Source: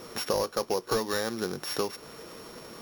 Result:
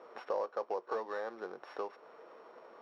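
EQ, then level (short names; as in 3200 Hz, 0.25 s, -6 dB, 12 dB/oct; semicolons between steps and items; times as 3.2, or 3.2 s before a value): ladder band-pass 820 Hz, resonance 20%; +5.5 dB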